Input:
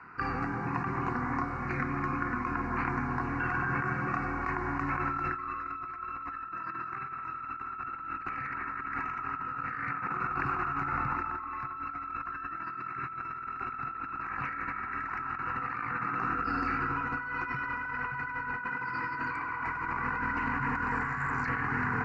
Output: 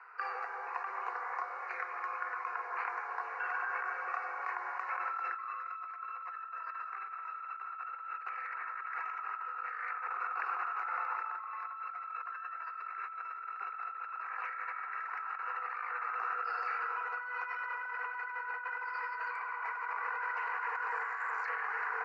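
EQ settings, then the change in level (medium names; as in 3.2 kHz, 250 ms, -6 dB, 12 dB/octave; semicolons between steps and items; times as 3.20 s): steep high-pass 440 Hz 72 dB/octave; distance through air 60 m; -3.5 dB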